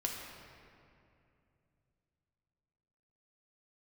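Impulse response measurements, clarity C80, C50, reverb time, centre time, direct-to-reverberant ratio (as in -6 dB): 3.0 dB, 1.5 dB, 2.6 s, 92 ms, -1.0 dB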